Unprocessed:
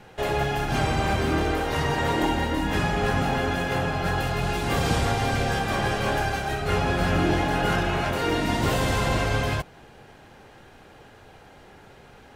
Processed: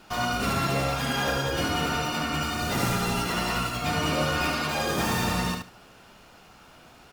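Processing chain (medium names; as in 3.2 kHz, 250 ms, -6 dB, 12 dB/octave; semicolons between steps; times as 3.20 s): treble shelf 8.2 kHz +7.5 dB; on a send: feedback delay 127 ms, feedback 16%, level -5 dB; on the sum: speed mistake 45 rpm record played at 78 rpm; trim -4 dB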